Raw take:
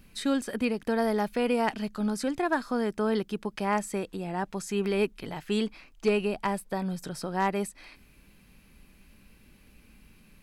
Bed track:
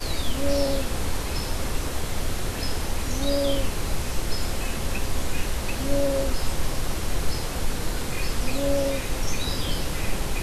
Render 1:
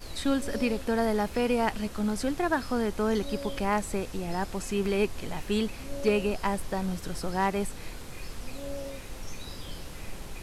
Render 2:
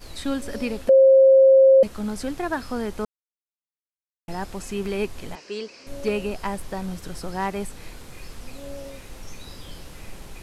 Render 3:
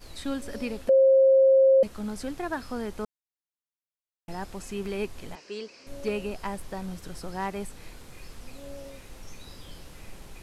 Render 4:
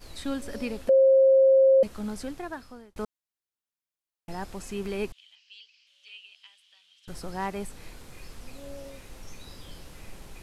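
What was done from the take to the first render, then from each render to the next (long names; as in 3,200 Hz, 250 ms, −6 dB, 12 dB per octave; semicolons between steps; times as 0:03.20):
mix in bed track −13.5 dB
0:00.89–0:01.83: beep over 534 Hz −9.5 dBFS; 0:03.05–0:04.28: silence; 0:05.35–0:05.87: loudspeaker in its box 420–6,500 Hz, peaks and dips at 440 Hz +3 dB, 800 Hz −10 dB, 1,300 Hz −5 dB, 1,900 Hz −4 dB, 3,500 Hz −9 dB, 5,000 Hz +9 dB
level −5 dB
0:02.12–0:02.96: fade out; 0:05.12–0:07.08: four-pole ladder band-pass 3,300 Hz, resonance 75%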